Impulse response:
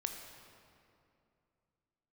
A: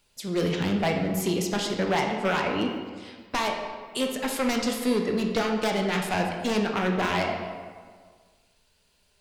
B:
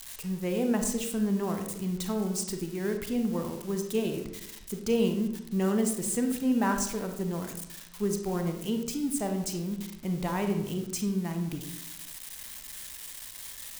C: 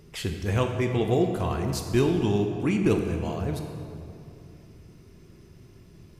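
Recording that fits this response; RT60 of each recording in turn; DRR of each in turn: C; 1.7, 0.80, 2.6 seconds; 2.0, 5.0, 4.0 decibels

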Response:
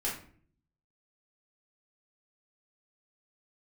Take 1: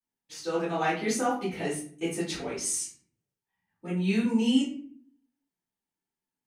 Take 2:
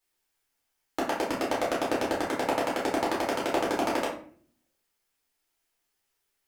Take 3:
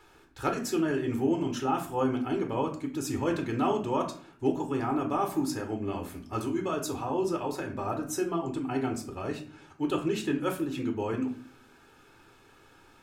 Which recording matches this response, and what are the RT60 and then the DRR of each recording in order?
2; 0.50, 0.50, 0.50 seconds; −12.5, −6.0, 3.5 decibels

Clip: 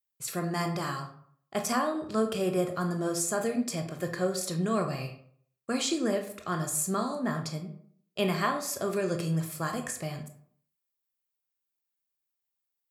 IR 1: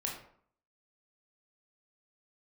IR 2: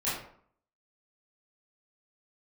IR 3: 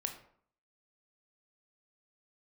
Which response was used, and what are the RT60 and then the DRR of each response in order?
3; 0.60, 0.60, 0.60 seconds; −2.0, −11.5, 4.0 decibels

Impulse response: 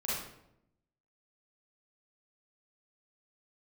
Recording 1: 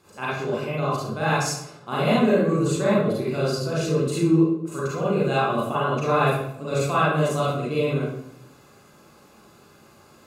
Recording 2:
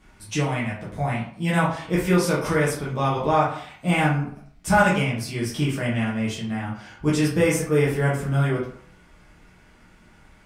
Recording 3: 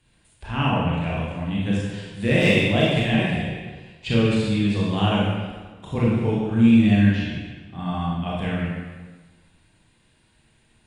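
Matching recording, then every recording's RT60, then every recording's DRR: 1; 0.80, 0.55, 1.4 seconds; −8.5, −7.5, −6.0 decibels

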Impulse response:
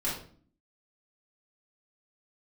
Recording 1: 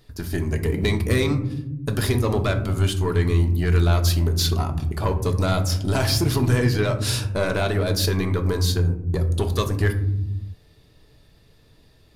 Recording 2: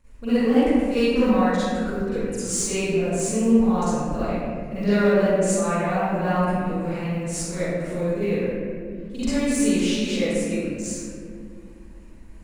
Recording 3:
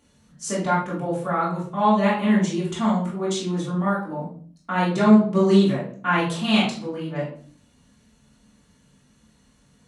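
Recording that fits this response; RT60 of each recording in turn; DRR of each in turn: 3; non-exponential decay, 2.2 s, 0.50 s; 4.5, −15.0, −8.5 decibels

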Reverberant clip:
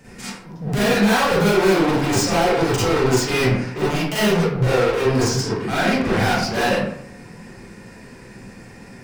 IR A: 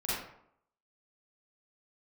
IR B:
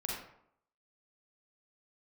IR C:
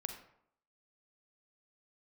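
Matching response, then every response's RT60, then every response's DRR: A; 0.70, 0.70, 0.70 seconds; −10.0, −3.5, 5.5 decibels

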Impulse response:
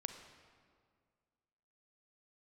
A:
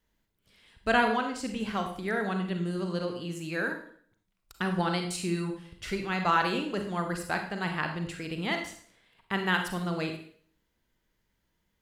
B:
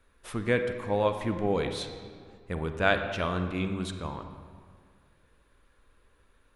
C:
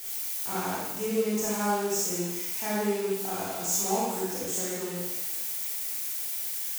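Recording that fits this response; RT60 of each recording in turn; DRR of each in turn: B; 0.55, 2.0, 1.1 seconds; 4.5, 7.0, −7.0 decibels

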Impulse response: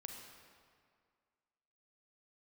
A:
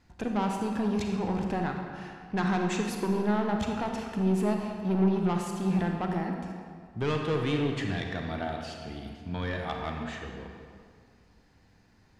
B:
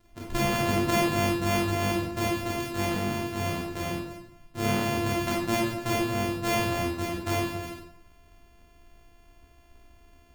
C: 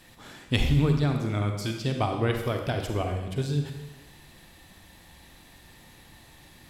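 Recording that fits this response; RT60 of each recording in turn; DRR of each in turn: A; 2.0, 0.70, 1.1 seconds; 2.0, −4.0, 4.0 decibels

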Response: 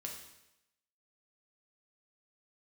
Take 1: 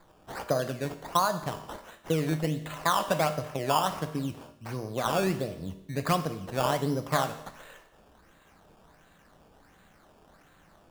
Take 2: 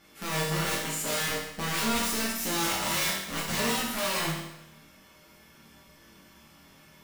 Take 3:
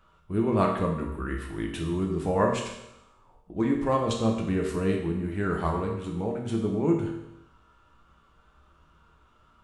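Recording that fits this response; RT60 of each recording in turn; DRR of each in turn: 3; 0.90, 0.90, 0.90 seconds; 8.0, −7.0, −0.5 decibels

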